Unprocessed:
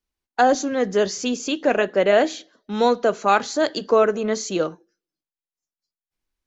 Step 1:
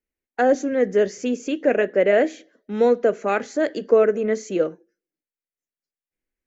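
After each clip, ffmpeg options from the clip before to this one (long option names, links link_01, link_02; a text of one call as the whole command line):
ffmpeg -i in.wav -af "equalizer=frequency=250:width_type=o:width=1:gain=5,equalizer=frequency=500:width_type=o:width=1:gain=9,equalizer=frequency=1000:width_type=o:width=1:gain=-8,equalizer=frequency=2000:width_type=o:width=1:gain=10,equalizer=frequency=4000:width_type=o:width=1:gain=-10,volume=-6dB" out.wav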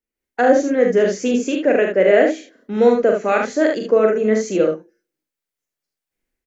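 ffmpeg -i in.wav -filter_complex "[0:a]dynaudnorm=framelen=120:gausssize=3:maxgain=9dB,asplit=2[link_01][link_02];[link_02]aecho=0:1:42|74:0.596|0.562[link_03];[link_01][link_03]amix=inputs=2:normalize=0,volume=-3.5dB" out.wav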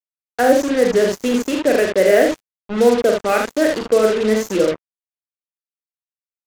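ffmpeg -i in.wav -af "acrusher=bits=3:mix=0:aa=0.5" out.wav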